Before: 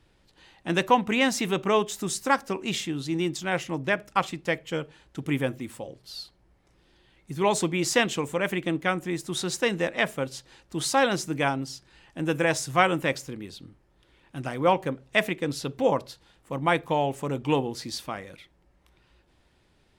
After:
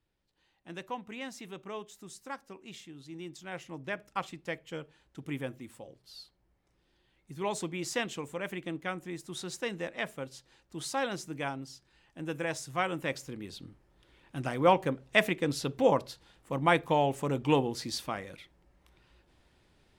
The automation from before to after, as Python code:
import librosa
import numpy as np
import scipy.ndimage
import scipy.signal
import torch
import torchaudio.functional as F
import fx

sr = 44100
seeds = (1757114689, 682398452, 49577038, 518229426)

y = fx.gain(x, sr, db=fx.line((2.92, -18.0), (4.07, -10.0), (12.85, -10.0), (13.6, -1.5)))